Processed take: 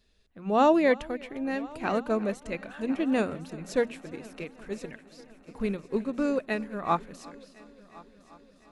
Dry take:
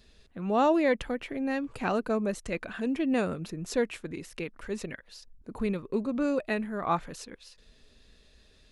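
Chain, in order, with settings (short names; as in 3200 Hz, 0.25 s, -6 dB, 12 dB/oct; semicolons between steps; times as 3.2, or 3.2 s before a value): notches 60/120/180/240 Hz; multi-head echo 0.353 s, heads first and third, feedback 68%, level -17 dB; upward expander 1.5:1, over -46 dBFS; gain +3.5 dB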